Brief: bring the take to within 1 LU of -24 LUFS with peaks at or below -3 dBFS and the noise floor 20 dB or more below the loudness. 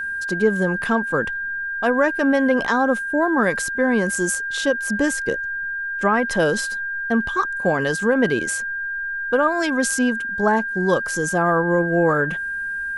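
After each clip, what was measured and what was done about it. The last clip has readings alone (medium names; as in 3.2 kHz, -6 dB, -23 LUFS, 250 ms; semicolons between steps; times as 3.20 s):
steady tone 1.6 kHz; tone level -24 dBFS; loudness -20.5 LUFS; peak level -5.5 dBFS; loudness target -24.0 LUFS
-> band-stop 1.6 kHz, Q 30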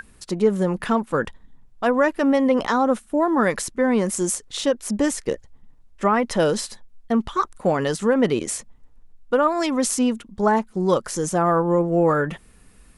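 steady tone not found; loudness -21.5 LUFS; peak level -5.5 dBFS; loudness target -24.0 LUFS
-> trim -2.5 dB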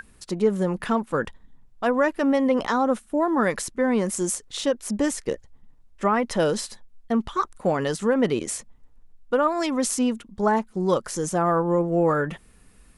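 loudness -24.0 LUFS; peak level -8.0 dBFS; noise floor -54 dBFS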